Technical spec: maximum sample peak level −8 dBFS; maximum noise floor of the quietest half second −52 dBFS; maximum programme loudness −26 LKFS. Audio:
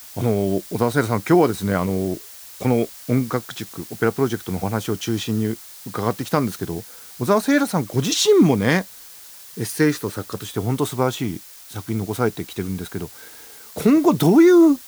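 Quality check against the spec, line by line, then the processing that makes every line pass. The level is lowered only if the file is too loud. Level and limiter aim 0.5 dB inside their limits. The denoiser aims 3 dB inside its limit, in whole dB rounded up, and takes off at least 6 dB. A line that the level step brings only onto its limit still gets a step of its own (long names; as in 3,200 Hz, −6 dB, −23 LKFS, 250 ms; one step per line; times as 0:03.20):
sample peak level −4.5 dBFS: out of spec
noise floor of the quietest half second −42 dBFS: out of spec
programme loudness −20.5 LKFS: out of spec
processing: broadband denoise 7 dB, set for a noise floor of −42 dBFS
level −6 dB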